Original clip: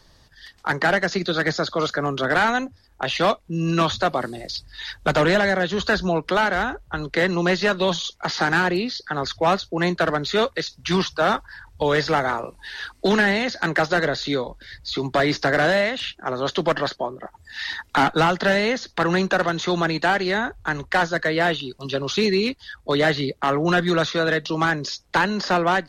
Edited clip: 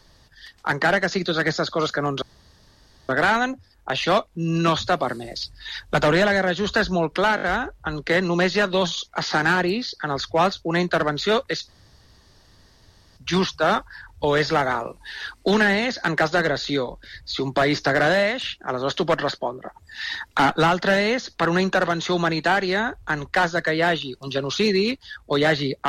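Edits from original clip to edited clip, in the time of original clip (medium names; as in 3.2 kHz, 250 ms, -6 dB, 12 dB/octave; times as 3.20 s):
2.22 s: insert room tone 0.87 s
6.49 s: stutter 0.02 s, 4 plays
10.75 s: insert room tone 1.49 s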